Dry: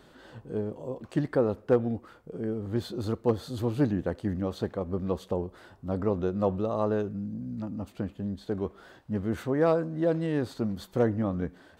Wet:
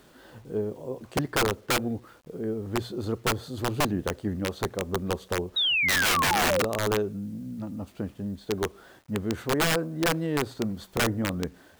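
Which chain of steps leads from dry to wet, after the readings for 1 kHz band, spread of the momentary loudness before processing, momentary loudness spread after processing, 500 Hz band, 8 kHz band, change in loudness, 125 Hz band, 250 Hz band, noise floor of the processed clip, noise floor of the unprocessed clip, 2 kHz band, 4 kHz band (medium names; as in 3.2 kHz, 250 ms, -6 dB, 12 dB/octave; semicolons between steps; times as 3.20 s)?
+7.5 dB, 10 LU, 14 LU, -1.5 dB, no reading, +2.5 dB, -0.5 dB, -1.0 dB, -55 dBFS, -57 dBFS, +16.0 dB, +19.5 dB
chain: hum notches 60/120 Hz; dynamic bell 400 Hz, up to +5 dB, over -42 dBFS, Q 4.9; painted sound fall, 5.56–6.63 s, 470–3900 Hz -24 dBFS; bit crusher 10-bit; integer overflow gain 18 dB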